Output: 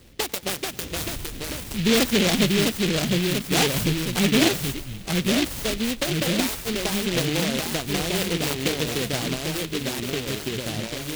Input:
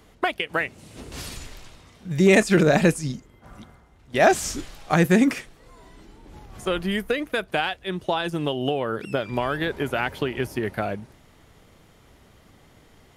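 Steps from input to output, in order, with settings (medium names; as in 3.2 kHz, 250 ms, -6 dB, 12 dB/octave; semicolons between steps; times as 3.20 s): steep low-pass 12 kHz 72 dB/octave; peaking EQ 1.1 kHz -10 dB 1.6 oct; in parallel at -1 dB: compression, threshold -30 dBFS, peak gain reduction 15.5 dB; on the sum: saturation -9 dBFS, distortion -21 dB; on a send: thinning echo 110 ms, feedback 72%, level -23 dB; on the sum: ever faster or slower copies 485 ms, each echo -2 st, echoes 3; tape speed +18%; delay time shaken by noise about 2.8 kHz, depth 0.24 ms; trim -1.5 dB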